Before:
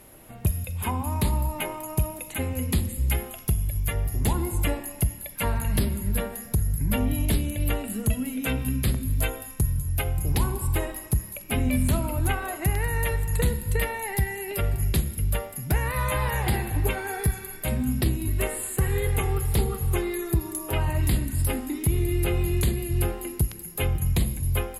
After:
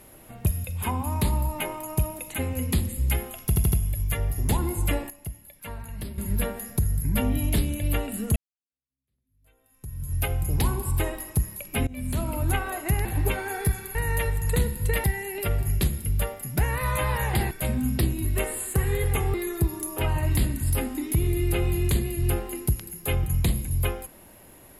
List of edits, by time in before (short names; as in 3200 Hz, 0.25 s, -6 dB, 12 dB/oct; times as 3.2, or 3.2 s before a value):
3.48 stutter 0.08 s, 4 plays
4.86–5.94 gain -11.5 dB
8.12–9.89 fade in exponential
11.63–12.14 fade in, from -22.5 dB
13.9–14.17 cut
16.64–17.54 move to 12.81
19.37–20.06 cut